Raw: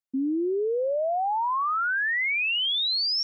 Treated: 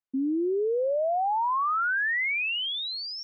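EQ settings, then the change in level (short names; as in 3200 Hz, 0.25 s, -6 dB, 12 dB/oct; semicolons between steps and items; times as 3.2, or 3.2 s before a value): tone controls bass -2 dB, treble -15 dB; 0.0 dB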